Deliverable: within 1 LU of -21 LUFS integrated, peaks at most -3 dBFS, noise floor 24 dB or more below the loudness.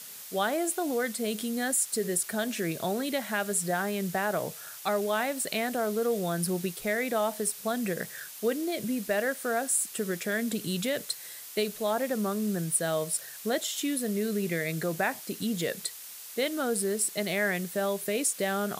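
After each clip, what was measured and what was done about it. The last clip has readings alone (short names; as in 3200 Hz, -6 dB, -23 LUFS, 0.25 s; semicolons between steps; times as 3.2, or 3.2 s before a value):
noise floor -44 dBFS; noise floor target -54 dBFS; loudness -29.5 LUFS; peak -13.5 dBFS; loudness target -21.0 LUFS
-> noise print and reduce 10 dB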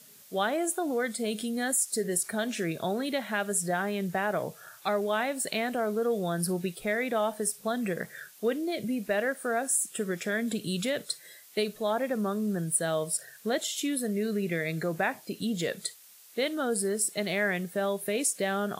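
noise floor -54 dBFS; loudness -30.0 LUFS; peak -13.5 dBFS; loudness target -21.0 LUFS
-> gain +9 dB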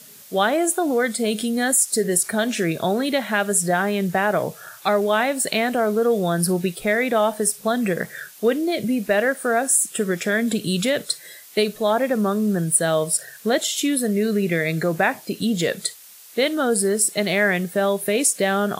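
loudness -21.0 LUFS; peak -4.5 dBFS; noise floor -45 dBFS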